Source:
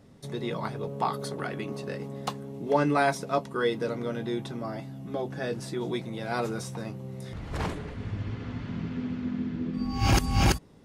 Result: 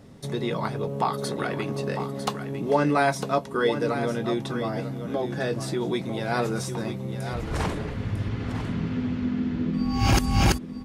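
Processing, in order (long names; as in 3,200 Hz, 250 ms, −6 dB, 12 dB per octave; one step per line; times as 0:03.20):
in parallel at +0.5 dB: downward compressor, threshold −32 dBFS, peak gain reduction 13.5 dB
on the sum: single-tap delay 951 ms −9.5 dB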